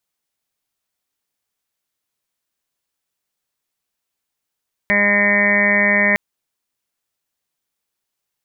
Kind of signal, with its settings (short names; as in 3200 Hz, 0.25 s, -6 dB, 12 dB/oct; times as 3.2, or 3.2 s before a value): steady additive tone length 1.26 s, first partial 204 Hz, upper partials -9/-0.5/-12/-8/-19/-17/-10.5/5/2.5/0 dB, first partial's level -21 dB